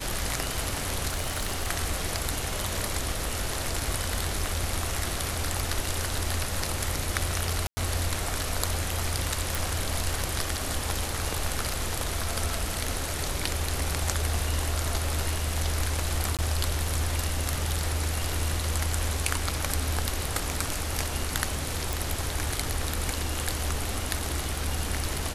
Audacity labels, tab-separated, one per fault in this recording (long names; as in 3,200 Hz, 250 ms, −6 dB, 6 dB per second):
1.080000	1.680000	clipping −24.5 dBFS
7.670000	7.770000	drop-out 100 ms
9.550000	9.550000	click
16.370000	16.390000	drop-out 17 ms
21.930000	21.930000	click